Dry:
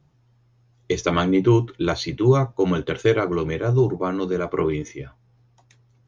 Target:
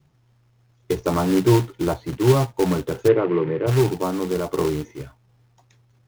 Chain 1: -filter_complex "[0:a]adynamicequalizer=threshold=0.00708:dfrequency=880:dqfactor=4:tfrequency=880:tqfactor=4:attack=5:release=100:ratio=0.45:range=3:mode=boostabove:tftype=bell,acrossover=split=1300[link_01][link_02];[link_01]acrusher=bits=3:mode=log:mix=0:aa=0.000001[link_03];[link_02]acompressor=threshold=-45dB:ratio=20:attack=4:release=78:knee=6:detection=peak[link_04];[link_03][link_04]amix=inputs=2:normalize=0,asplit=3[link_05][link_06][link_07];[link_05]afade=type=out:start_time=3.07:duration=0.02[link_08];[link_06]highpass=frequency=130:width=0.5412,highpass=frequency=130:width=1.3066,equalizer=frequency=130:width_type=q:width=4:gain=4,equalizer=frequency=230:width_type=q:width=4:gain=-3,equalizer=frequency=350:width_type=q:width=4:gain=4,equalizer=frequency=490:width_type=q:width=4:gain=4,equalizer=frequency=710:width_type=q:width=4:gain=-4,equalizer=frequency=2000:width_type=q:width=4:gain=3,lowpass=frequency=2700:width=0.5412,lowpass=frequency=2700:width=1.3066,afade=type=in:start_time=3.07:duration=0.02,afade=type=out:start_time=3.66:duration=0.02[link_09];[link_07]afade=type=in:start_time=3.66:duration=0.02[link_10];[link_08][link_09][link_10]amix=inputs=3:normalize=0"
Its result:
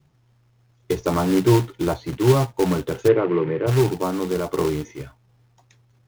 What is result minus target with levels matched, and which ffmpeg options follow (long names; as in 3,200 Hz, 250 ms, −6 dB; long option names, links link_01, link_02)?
downward compressor: peak gain reduction −8 dB
-filter_complex "[0:a]adynamicequalizer=threshold=0.00708:dfrequency=880:dqfactor=4:tfrequency=880:tqfactor=4:attack=5:release=100:ratio=0.45:range=3:mode=boostabove:tftype=bell,acrossover=split=1300[link_01][link_02];[link_01]acrusher=bits=3:mode=log:mix=0:aa=0.000001[link_03];[link_02]acompressor=threshold=-53.5dB:ratio=20:attack=4:release=78:knee=6:detection=peak[link_04];[link_03][link_04]amix=inputs=2:normalize=0,asplit=3[link_05][link_06][link_07];[link_05]afade=type=out:start_time=3.07:duration=0.02[link_08];[link_06]highpass=frequency=130:width=0.5412,highpass=frequency=130:width=1.3066,equalizer=frequency=130:width_type=q:width=4:gain=4,equalizer=frequency=230:width_type=q:width=4:gain=-3,equalizer=frequency=350:width_type=q:width=4:gain=4,equalizer=frequency=490:width_type=q:width=4:gain=4,equalizer=frequency=710:width_type=q:width=4:gain=-4,equalizer=frequency=2000:width_type=q:width=4:gain=3,lowpass=frequency=2700:width=0.5412,lowpass=frequency=2700:width=1.3066,afade=type=in:start_time=3.07:duration=0.02,afade=type=out:start_time=3.66:duration=0.02[link_09];[link_07]afade=type=in:start_time=3.66:duration=0.02[link_10];[link_08][link_09][link_10]amix=inputs=3:normalize=0"